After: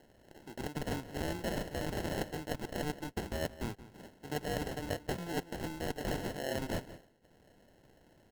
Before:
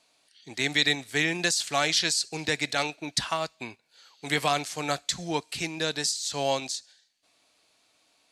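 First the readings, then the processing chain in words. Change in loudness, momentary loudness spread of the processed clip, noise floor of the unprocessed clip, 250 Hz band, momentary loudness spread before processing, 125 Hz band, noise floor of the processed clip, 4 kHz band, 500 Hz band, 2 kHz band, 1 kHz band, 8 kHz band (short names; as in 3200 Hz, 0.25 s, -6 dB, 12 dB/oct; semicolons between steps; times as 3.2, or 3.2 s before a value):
-11.5 dB, 8 LU, -67 dBFS, -4.5 dB, 11 LU, -2.0 dB, -65 dBFS, -18.5 dB, -6.0 dB, -14.5 dB, -11.0 dB, -18.0 dB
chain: reverse; compressor 12:1, threshold -36 dBFS, peak gain reduction 18.5 dB; reverse; sample-and-hold 37×; outdoor echo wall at 30 m, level -15 dB; gain +3.5 dB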